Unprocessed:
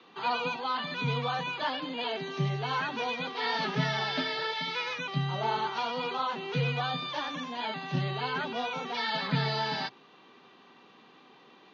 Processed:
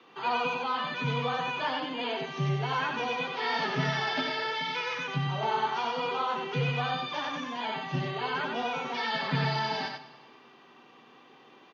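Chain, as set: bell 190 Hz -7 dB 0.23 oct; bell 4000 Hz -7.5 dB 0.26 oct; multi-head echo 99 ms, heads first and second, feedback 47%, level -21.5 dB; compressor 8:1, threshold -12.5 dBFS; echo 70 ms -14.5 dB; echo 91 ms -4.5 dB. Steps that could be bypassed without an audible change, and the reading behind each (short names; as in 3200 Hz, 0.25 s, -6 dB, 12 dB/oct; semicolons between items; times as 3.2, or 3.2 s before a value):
compressor, threshold -12.5 dBFS: input peak -17.0 dBFS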